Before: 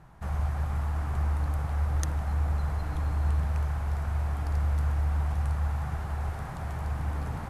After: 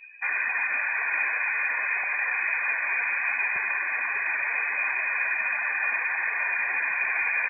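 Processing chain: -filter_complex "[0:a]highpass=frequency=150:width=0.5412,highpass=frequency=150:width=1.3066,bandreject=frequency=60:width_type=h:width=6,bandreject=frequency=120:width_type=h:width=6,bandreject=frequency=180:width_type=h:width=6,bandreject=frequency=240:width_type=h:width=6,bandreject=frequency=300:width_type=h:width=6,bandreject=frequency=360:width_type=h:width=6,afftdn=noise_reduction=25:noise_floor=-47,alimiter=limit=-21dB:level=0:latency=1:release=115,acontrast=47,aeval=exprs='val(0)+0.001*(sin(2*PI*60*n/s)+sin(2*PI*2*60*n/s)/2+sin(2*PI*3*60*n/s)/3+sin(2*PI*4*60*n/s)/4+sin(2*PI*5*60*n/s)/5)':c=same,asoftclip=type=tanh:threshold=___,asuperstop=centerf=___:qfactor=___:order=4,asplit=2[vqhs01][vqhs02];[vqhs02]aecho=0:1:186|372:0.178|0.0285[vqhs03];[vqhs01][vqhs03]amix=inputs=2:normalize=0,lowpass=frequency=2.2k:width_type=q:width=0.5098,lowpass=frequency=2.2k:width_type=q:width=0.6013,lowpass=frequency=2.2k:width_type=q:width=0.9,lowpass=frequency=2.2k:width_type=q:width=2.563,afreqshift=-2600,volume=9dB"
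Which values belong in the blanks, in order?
-23dB, 1300, 5.2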